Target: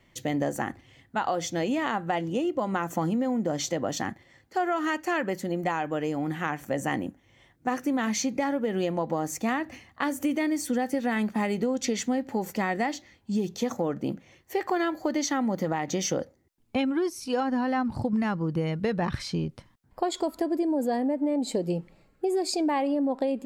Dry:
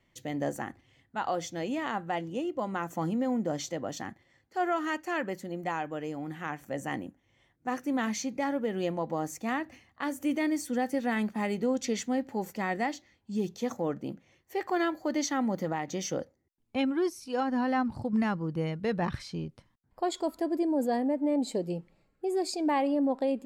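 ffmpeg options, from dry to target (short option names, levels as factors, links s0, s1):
-af "acompressor=threshold=0.0251:ratio=6,volume=2.66"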